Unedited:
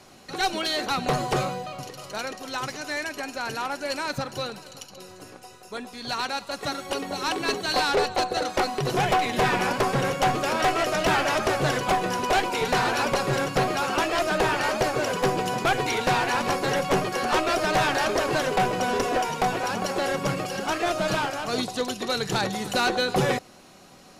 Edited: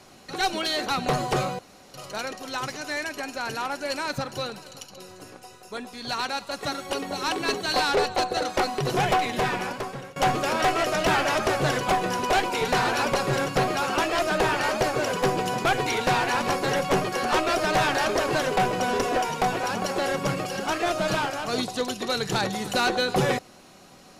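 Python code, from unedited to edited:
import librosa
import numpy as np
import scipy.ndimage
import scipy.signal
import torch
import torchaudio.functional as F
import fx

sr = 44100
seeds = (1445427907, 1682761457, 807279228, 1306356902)

y = fx.edit(x, sr, fx.room_tone_fill(start_s=1.59, length_s=0.35),
    fx.fade_out_to(start_s=9.12, length_s=1.04, floor_db=-22.5), tone=tone)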